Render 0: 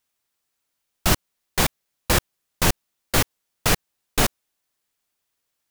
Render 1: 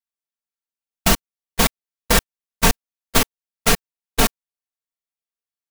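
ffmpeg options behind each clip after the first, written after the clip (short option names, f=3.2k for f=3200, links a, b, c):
-af "agate=range=-26dB:threshold=-20dB:ratio=16:detection=peak,aecho=1:1:4.4:0.81,alimiter=limit=-7dB:level=0:latency=1:release=420,volume=4.5dB"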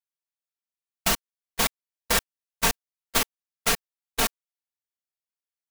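-af "lowshelf=f=390:g=-9,volume=-5dB"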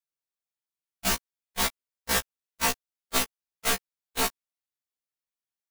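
-af "afftfilt=real='re*1.73*eq(mod(b,3),0)':imag='im*1.73*eq(mod(b,3),0)':win_size=2048:overlap=0.75"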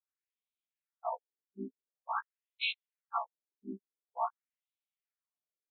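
-af "afftfilt=real='re*between(b*sr/1024,290*pow(3000/290,0.5+0.5*sin(2*PI*0.47*pts/sr))/1.41,290*pow(3000/290,0.5+0.5*sin(2*PI*0.47*pts/sr))*1.41)':imag='im*between(b*sr/1024,290*pow(3000/290,0.5+0.5*sin(2*PI*0.47*pts/sr))/1.41,290*pow(3000/290,0.5+0.5*sin(2*PI*0.47*pts/sr))*1.41)':win_size=1024:overlap=0.75"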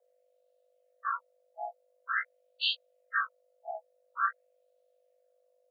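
-af "flanger=delay=22.5:depth=3.4:speed=2.5,aeval=exprs='val(0)+0.000141*(sin(2*PI*50*n/s)+sin(2*PI*2*50*n/s)/2+sin(2*PI*3*50*n/s)/3+sin(2*PI*4*50*n/s)/4+sin(2*PI*5*50*n/s)/5)':c=same,afreqshift=450,volume=7dB"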